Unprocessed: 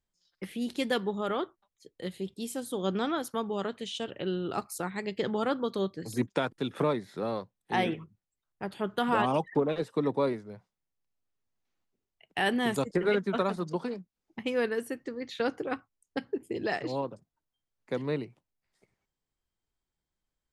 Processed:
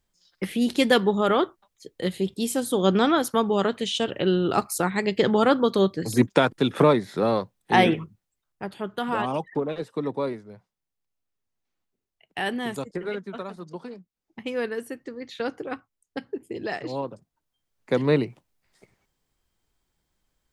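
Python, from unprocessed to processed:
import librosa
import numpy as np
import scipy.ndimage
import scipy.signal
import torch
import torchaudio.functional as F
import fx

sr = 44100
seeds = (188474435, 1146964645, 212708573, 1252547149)

y = fx.gain(x, sr, db=fx.line((8.02, 10.0), (8.89, 0.0), (12.41, 0.0), (13.47, -7.0), (14.52, 0.5), (16.75, 0.5), (18.2, 11.5)))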